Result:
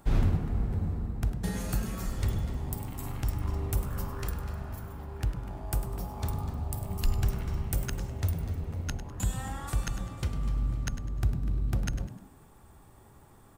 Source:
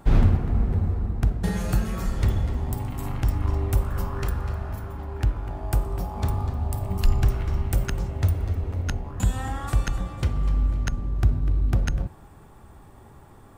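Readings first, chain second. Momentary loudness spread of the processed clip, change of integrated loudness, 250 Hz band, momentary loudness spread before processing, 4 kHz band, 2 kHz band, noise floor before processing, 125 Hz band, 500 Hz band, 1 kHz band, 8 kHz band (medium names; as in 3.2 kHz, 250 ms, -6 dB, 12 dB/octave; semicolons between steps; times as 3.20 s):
6 LU, -7.0 dB, -5.5 dB, 7 LU, -3.5 dB, -6.0 dB, -48 dBFS, -7.0 dB, -7.0 dB, -7.0 dB, -1.0 dB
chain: treble shelf 4.5 kHz +8.5 dB; frequency-shifting echo 101 ms, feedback 34%, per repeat +72 Hz, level -12.5 dB; trim -7.5 dB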